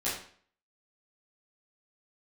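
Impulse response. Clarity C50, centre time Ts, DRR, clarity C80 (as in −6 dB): 4.0 dB, 43 ms, −10.5 dB, 8.0 dB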